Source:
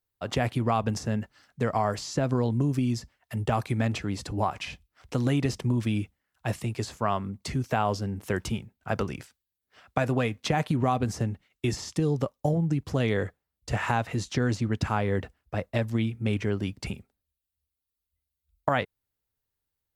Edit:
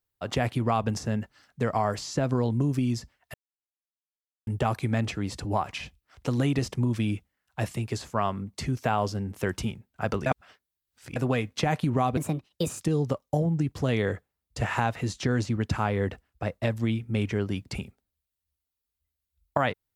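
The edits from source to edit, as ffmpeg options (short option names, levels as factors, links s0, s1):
-filter_complex "[0:a]asplit=6[s0][s1][s2][s3][s4][s5];[s0]atrim=end=3.34,asetpts=PTS-STARTPTS,afade=t=out:st=3.336:d=0.004:c=hsin,apad=pad_dur=1.13[s6];[s1]atrim=start=3.34:end=9.132,asetpts=PTS-STARTPTS,afade=t=in:d=0.004:c=hsin[s7];[s2]atrim=start=9.128:end=10.032,asetpts=PTS-STARTPTS,areverse[s8];[s3]atrim=start=10.028:end=11.044[s9];[s4]atrim=start=11.04:end=11.93,asetpts=PTS-STARTPTS,asetrate=60858,aresample=44100,atrim=end_sample=28441,asetpts=PTS-STARTPTS[s10];[s5]atrim=start=11.926[s11];[s6][s7]concat=n=2:v=0:a=1[s12];[s12][s8]acrossfade=d=0.004:c1=hsin:c2=hsin[s13];[s13][s9]acrossfade=d=0.004:c1=hsin:c2=hsin[s14];[s14][s10]acrossfade=d=0.004:c1=hsin:c2=hsin[s15];[s15][s11]acrossfade=d=0.004:c1=hsin:c2=hsin"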